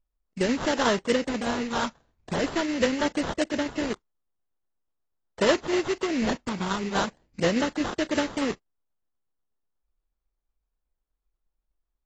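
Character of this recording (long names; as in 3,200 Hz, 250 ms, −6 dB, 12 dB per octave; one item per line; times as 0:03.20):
phaser sweep stages 12, 0.41 Hz, lowest notch 630–4,000 Hz
aliases and images of a low sample rate 2,400 Hz, jitter 20%
tremolo saw down 8.2 Hz, depth 40%
AAC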